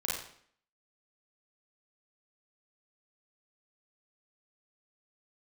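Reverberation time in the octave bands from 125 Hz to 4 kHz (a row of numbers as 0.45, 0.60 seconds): 0.60, 0.65, 0.60, 0.60, 0.60, 0.55 seconds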